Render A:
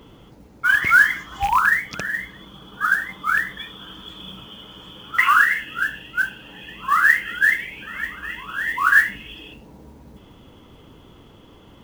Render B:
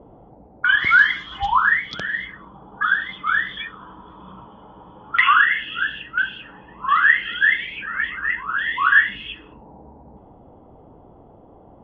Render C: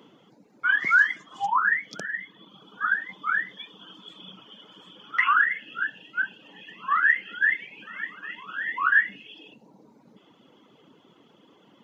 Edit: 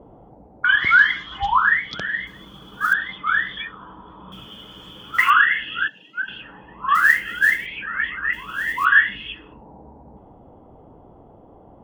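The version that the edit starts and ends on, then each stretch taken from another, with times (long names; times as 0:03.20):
B
0:02.27–0:02.93: punch in from A
0:04.32–0:05.30: punch in from A
0:05.88–0:06.28: punch in from C
0:06.95–0:07.66: punch in from A
0:08.33–0:08.85: punch in from A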